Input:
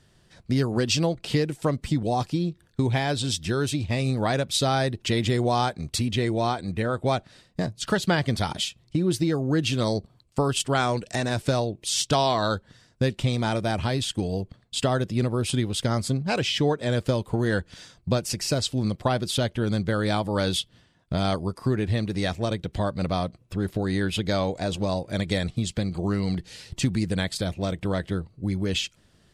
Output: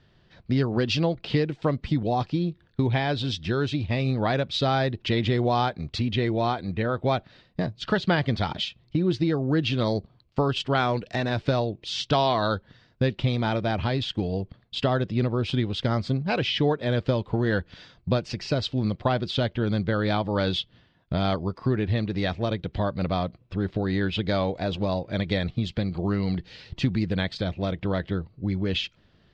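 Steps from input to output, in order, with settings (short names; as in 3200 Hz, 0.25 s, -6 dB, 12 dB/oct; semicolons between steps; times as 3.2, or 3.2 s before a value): LPF 4300 Hz 24 dB/oct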